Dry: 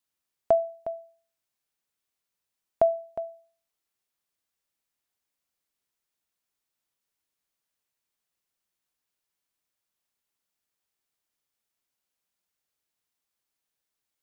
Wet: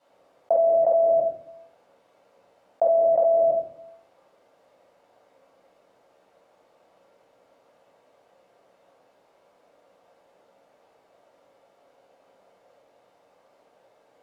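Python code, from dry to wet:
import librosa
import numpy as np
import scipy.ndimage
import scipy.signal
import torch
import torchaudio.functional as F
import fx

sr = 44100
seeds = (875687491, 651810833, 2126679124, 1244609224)

y = fx.bandpass_q(x, sr, hz=570.0, q=3.2)
y = fx.room_shoebox(y, sr, seeds[0], volume_m3=810.0, walls='furnished', distance_m=7.4)
y = fx.env_flatten(y, sr, amount_pct=100)
y = y * 10.0 ** (-6.5 / 20.0)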